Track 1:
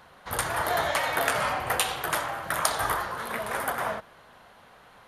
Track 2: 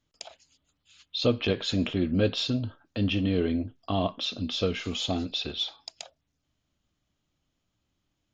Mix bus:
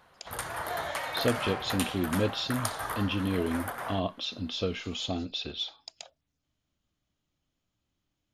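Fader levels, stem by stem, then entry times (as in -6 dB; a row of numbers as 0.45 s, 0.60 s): -7.5 dB, -3.5 dB; 0.00 s, 0.00 s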